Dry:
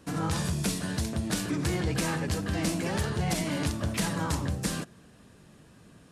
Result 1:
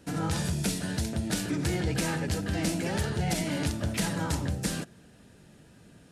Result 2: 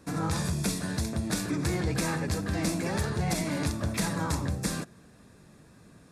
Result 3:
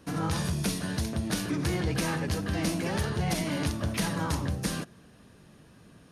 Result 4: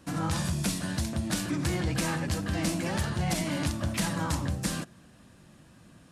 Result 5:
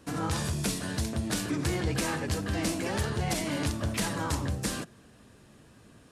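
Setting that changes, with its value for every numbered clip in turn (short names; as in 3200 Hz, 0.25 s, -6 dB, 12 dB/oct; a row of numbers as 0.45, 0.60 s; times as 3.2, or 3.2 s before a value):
notch, frequency: 1100, 3000, 7600, 430, 170 Hz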